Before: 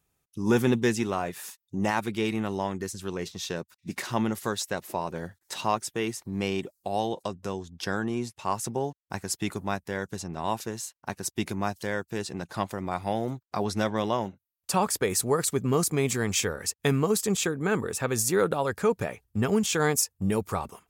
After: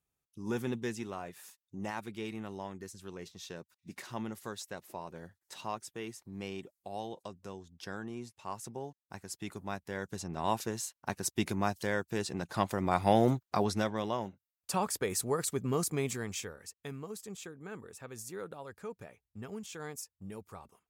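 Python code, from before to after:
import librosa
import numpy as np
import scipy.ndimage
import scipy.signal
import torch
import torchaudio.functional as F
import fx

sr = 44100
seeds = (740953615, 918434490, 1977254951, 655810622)

y = fx.gain(x, sr, db=fx.line((9.33, -12.0), (10.5, -2.0), (12.47, -2.0), (13.28, 5.0), (13.95, -7.0), (16.0, -7.0), (16.76, -18.5)))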